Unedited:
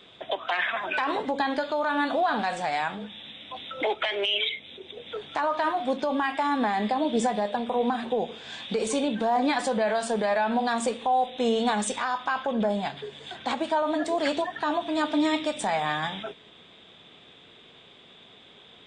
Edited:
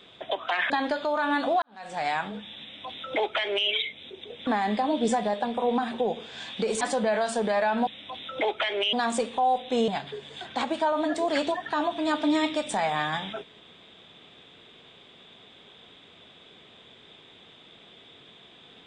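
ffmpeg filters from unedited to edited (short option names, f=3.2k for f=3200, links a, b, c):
-filter_complex "[0:a]asplit=8[a][b][c][d][e][f][g][h];[a]atrim=end=0.702[i];[b]atrim=start=1.368:end=2.29,asetpts=PTS-STARTPTS,afade=t=out:st=0.918:d=0.004:c=hsin[j];[c]atrim=start=2.29:end=5.142,asetpts=PTS-STARTPTS,afade=t=in:d=0.42:c=qua[k];[d]atrim=start=6.588:end=8.932[l];[e]atrim=start=9.548:end=10.612[m];[f]atrim=start=3.288:end=4.352[n];[g]atrim=start=10.608:end=11.562[o];[h]atrim=start=12.778[p];[j][k]concat=n=2:v=0:a=1[q];[i][q]acrossfade=d=0.004:c1=hsin:c2=hsin[r];[r][l]acrossfade=d=0.004:c1=hsin:c2=hsin[s];[s][m]acrossfade=d=0.004:c1=hsin:c2=hsin[t];[t][n]acrossfade=d=0.004:c1=hsin:c2=hsin[u];[u][o]acrossfade=d=0.004:c1=hsin:c2=hsin[v];[v][p]acrossfade=d=0.004:c1=hsin:c2=hsin"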